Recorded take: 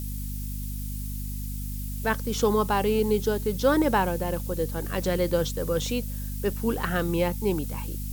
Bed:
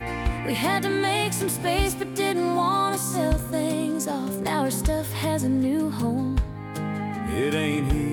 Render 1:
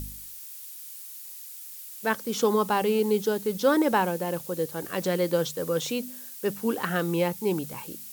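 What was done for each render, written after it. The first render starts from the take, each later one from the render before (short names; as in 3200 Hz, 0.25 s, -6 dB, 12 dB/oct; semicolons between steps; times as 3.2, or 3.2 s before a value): de-hum 50 Hz, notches 5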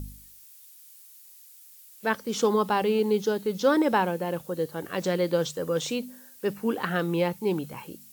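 noise print and reduce 9 dB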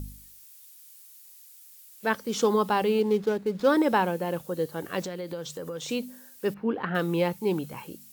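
3.01–3.67 median filter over 15 samples; 5.04–5.89 compressor 4:1, threshold -33 dBFS; 6.54–6.95 air absorption 360 m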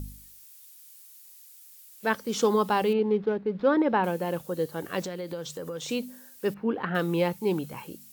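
2.93–4.04 air absorption 310 m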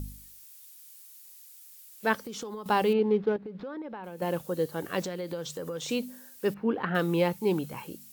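2.21–2.66 compressor 8:1, threshold -35 dBFS; 3.36–4.22 compressor 8:1, threshold -36 dBFS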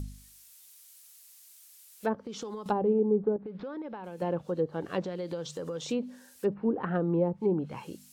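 treble ducked by the level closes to 660 Hz, closed at -22 dBFS; dynamic EQ 2000 Hz, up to -6 dB, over -48 dBFS, Q 0.99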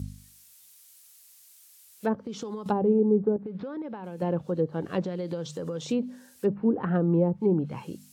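HPF 62 Hz; bell 120 Hz +7 dB 2.8 oct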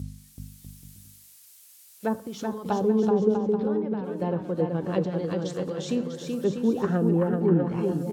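on a send: bouncing-ball echo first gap 0.38 s, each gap 0.7×, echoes 5; on the sum: two-slope reverb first 0.72 s, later 2.4 s, from -21 dB, DRR 15 dB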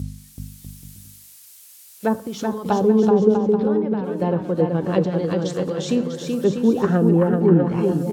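gain +6.5 dB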